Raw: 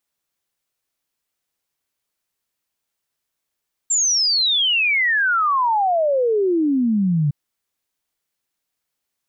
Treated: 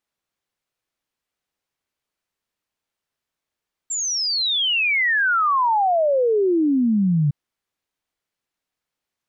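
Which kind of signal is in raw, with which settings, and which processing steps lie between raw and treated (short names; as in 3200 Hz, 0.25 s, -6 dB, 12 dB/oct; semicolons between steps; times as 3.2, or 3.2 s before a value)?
log sweep 7500 Hz -> 140 Hz 3.41 s -15 dBFS
LPF 3500 Hz 6 dB/oct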